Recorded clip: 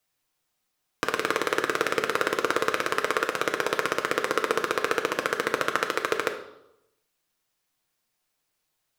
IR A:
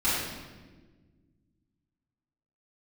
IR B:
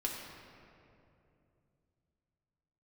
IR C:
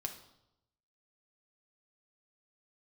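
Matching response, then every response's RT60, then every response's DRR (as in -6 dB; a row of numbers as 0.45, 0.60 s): C; 1.4, 2.7, 0.85 s; -11.5, -2.0, 3.5 dB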